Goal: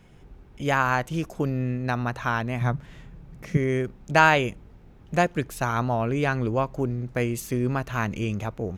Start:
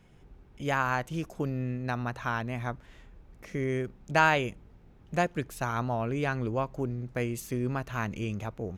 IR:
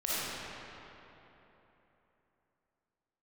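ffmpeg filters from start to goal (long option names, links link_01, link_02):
-filter_complex "[0:a]asettb=1/sr,asplit=3[link_01][link_02][link_03];[link_01]atrim=end=2.614[link_04];[link_02]atrim=start=2.61:end=3.57,asetpts=PTS-STARTPTS,afade=type=in:duration=0.004:curve=qsin,afade=type=out:start_time=0.956:duration=0.004:curve=qsin,equalizer=frequency=150:width_type=o:width=0.59:gain=14.5[link_05];[link_03]atrim=start=3.566[link_06];[link_04][link_05]acrossfade=duration=0.004:curve1=hsin:curve2=qsin[link_07];[link_07][link_06]acrossfade=duration=0.004:curve1=qsin:curve2=hsin,volume=5.5dB"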